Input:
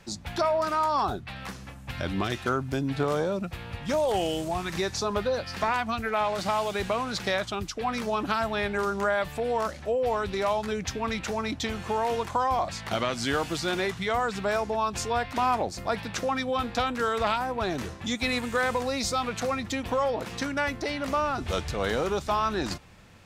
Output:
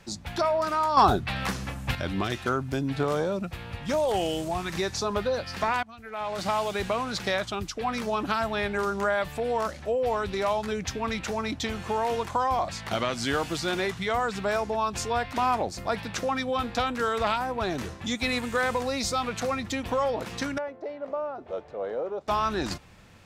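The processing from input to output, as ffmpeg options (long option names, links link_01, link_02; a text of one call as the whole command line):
ffmpeg -i in.wav -filter_complex "[0:a]asettb=1/sr,asplit=3[link_01][link_02][link_03];[link_01]atrim=end=20.584[link_04];[link_02]atrim=start=20.58:end=22.28,asetpts=PTS-STARTPTS,afade=type=in:duration=0.004:curve=qsin,afade=type=out:start_time=1.696:duration=0.004:curve=qsin,bandpass=frequency=560:width_type=q:width=2.2[link_05];[link_03]atrim=start=22.276[link_06];[link_04][link_05]acrossfade=duration=0.004:curve1=hsin:curve2=qsin[link_07];[link_07][link_06]acrossfade=duration=0.004:curve1=qsin:curve2=hsin,asplit=4[link_08][link_09][link_10][link_11];[link_08]atrim=end=0.972[link_12];[link_09]atrim=start=0.968:end=1.952,asetpts=PTS-STARTPTS,volume=8.5dB[link_13];[link_10]atrim=start=1.948:end=5.83,asetpts=PTS-STARTPTS,afade=type=out:start_time=3.878:duration=0.004:curve=hsin:silence=0.11885[link_14];[link_11]atrim=start=5.83,asetpts=PTS-STARTPTS,afade=type=in:duration=0.61:curve=qua:silence=0.11885[link_15];[link_12][link_13]acrossfade=duration=0.004:curve1=hsin:curve2=hsin[link_16];[link_14][link_15]concat=n=2:v=0:a=1[link_17];[link_16][link_17]acrossfade=duration=0.004:curve1=hsin:curve2=hsin" out.wav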